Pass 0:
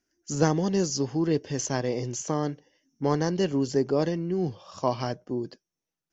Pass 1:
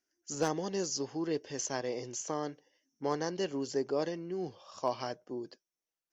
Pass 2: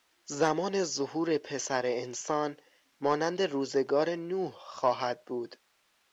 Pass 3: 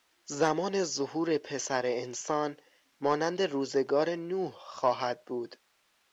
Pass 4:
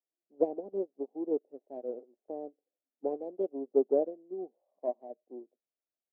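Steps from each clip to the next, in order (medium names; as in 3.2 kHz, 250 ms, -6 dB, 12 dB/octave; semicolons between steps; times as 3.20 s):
tone controls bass -12 dB, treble +1 dB; hard clipper -14 dBFS, distortion -28 dB; trim -5.5 dB
word length cut 12-bit, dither triangular; overdrive pedal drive 8 dB, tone 4.8 kHz, clips at -19 dBFS; treble shelf 6 kHz -10.5 dB; trim +5.5 dB
no audible change
self-modulated delay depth 0.24 ms; elliptic band-pass 220–700 Hz, stop band 40 dB; upward expansion 2.5:1, over -42 dBFS; trim +4 dB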